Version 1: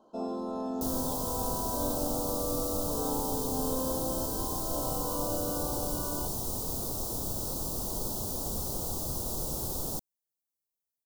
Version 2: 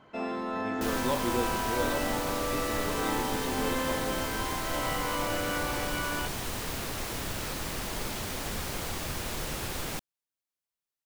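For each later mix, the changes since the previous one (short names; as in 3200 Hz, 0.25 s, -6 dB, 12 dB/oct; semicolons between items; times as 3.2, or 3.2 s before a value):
speech: remove HPF 1300 Hz; second sound: add high shelf 11000 Hz -8 dB; master: remove Butterworth band-stop 2100 Hz, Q 0.52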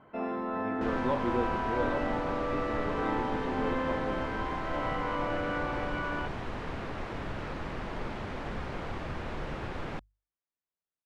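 second sound: add notches 50/100 Hz; master: add LPF 1900 Hz 12 dB/oct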